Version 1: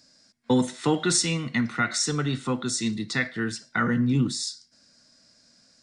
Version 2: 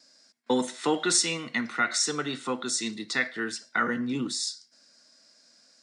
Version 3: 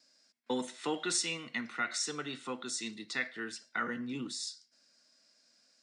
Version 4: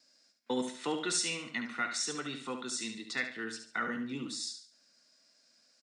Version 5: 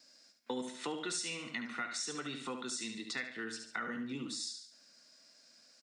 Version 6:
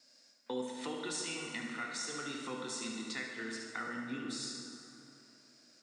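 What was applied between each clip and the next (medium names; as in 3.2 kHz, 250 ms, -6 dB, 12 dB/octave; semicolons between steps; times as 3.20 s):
gate with hold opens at -57 dBFS; high-pass 330 Hz 12 dB/octave
peaking EQ 2.7 kHz +4.5 dB 0.65 oct; trim -9 dB
feedback delay 71 ms, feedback 34%, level -8 dB
compression 2.5:1, threshold -45 dBFS, peak gain reduction 11.5 dB; trim +4.5 dB
reverberation RT60 3.1 s, pre-delay 8 ms, DRR 1.5 dB; trim -2.5 dB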